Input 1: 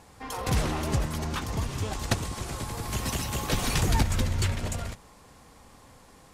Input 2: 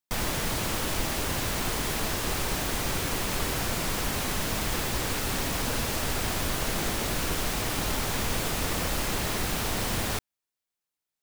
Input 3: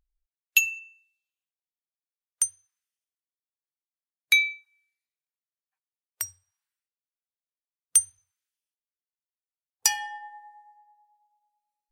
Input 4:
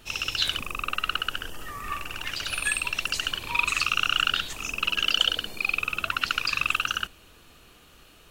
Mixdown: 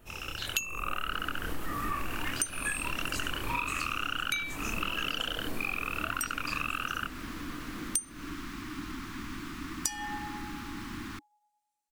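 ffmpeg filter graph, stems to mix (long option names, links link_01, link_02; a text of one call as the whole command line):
ffmpeg -i stem1.wav -i stem2.wav -i stem3.wav -i stem4.wav -filter_complex "[1:a]firequalizer=gain_entry='entry(150,0);entry(300,14);entry(500,-25);entry(1100,6);entry(3000,-1);entry(9100,-9)':delay=0.05:min_phase=1,adelay=1000,volume=-13dB[link_01];[2:a]volume=0.5dB[link_02];[3:a]equalizer=frequency=4200:width_type=o:width=1.7:gain=-14,dynaudnorm=framelen=480:gausssize=3:maxgain=8.5dB,flanger=delay=22.5:depth=6.6:speed=1.6,volume=0.5dB[link_03];[link_02]equalizer=frequency=7700:width=1.1:gain=7.5,alimiter=limit=-4.5dB:level=0:latency=1:release=128,volume=0dB[link_04];[link_01][link_03][link_04]amix=inputs=3:normalize=0,acompressor=threshold=-28dB:ratio=12" out.wav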